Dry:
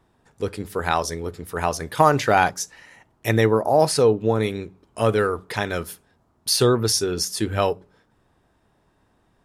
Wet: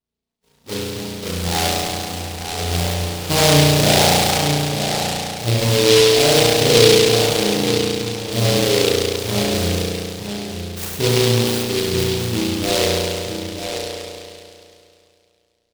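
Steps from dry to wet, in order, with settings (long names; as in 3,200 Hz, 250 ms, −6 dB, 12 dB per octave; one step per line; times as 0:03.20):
each half-wave held at its own peak
noise gate with hold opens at −45 dBFS
high-pass filter 42 Hz 6 dB per octave
tempo change 0.6×
flanger swept by the level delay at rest 4.5 ms, full sweep at −14.5 dBFS
slap from a distant wall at 160 metres, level −7 dB
spring reverb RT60 2.5 s, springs 34 ms, chirp 65 ms, DRR −8 dB
short delay modulated by noise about 3,500 Hz, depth 0.19 ms
level −7 dB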